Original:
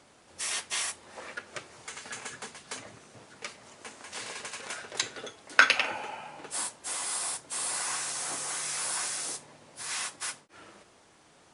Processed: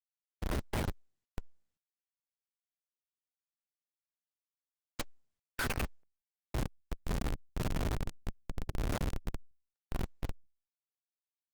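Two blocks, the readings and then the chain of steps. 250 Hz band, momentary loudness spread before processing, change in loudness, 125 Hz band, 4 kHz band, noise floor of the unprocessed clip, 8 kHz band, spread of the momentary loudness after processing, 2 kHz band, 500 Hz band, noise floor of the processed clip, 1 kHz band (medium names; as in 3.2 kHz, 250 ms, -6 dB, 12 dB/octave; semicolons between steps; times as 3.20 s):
+8.0 dB, 16 LU, -8.5 dB, +17.5 dB, -15.0 dB, -60 dBFS, -20.5 dB, 13 LU, -16.0 dB, -1.5 dB, under -85 dBFS, -10.0 dB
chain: thinning echo 60 ms, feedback 78%, high-pass 230 Hz, level -19 dB; Schmitt trigger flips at -24 dBFS; trim +3.5 dB; Opus 24 kbps 48 kHz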